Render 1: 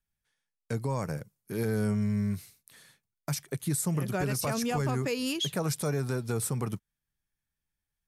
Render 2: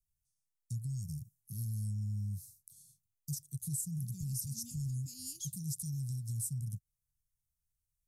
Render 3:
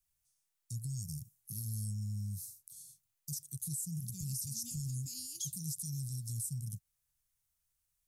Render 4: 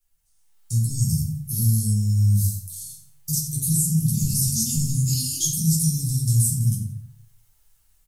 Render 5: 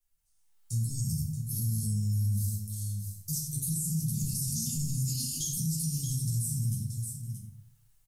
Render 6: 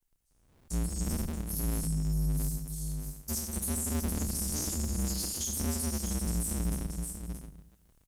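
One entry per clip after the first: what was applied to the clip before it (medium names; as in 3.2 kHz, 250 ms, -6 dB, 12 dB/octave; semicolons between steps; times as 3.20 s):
inverse Chebyshev band-stop 550–1600 Hz, stop band 80 dB; peaking EQ 660 Hz +11.5 dB 1.2 oct; compression 2:1, threshold -39 dBFS, peak gain reduction 6.5 dB; trim +1 dB
bass shelf 400 Hz -10 dB; peak limiter -36.5 dBFS, peak gain reduction 11.5 dB; trim +7.5 dB
level rider gain up to 10.5 dB; feedback delay 86 ms, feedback 32%, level -13 dB; reverberation RT60 0.40 s, pre-delay 7 ms, DRR -4.5 dB
delay 627 ms -10 dB; peak limiter -15.5 dBFS, peak gain reduction 7.5 dB; trim -7 dB
cycle switcher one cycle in 2, inverted; trim -1 dB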